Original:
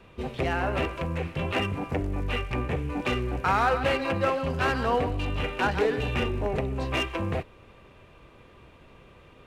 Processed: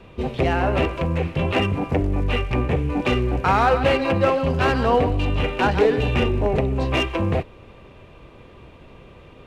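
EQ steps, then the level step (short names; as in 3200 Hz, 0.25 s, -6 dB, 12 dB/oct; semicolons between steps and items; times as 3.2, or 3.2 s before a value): bell 1500 Hz -4.5 dB 1.2 oct; high shelf 6000 Hz -9 dB; +8.0 dB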